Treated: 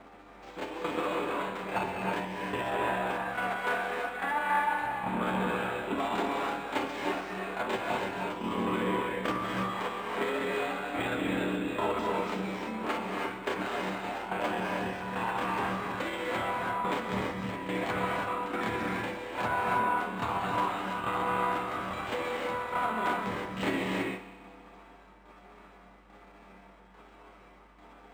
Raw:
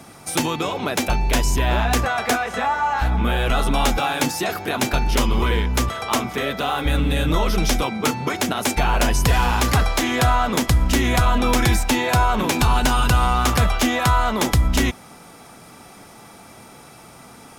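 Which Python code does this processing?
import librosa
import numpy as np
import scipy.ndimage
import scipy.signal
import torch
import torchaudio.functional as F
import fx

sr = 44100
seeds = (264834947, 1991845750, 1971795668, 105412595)

p1 = fx.lower_of_two(x, sr, delay_ms=10.0)
p2 = scipy.signal.sosfilt(scipy.signal.butter(2, 270.0, 'highpass', fs=sr, output='sos'), p1)
p3 = fx.high_shelf(p2, sr, hz=4200.0, db=4.5)
p4 = fx.rider(p3, sr, range_db=10, speed_s=0.5)
p5 = fx.tremolo_shape(p4, sr, shape='saw_down', hz=1.9, depth_pct=80)
p6 = fx.stretch_grains(p5, sr, factor=1.6, grain_ms=141.0)
p7 = fx.add_hum(p6, sr, base_hz=50, snr_db=32)
p8 = fx.air_absorb(p7, sr, metres=360.0)
p9 = p8 + fx.echo_heads(p8, sr, ms=63, heads='all three', feedback_pct=64, wet_db=-21.5, dry=0)
p10 = fx.rev_gated(p9, sr, seeds[0], gate_ms=350, shape='rising', drr_db=-0.5)
p11 = np.interp(np.arange(len(p10)), np.arange(len(p10))[::4], p10[::4])
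y = F.gain(torch.from_numpy(p11), -4.0).numpy()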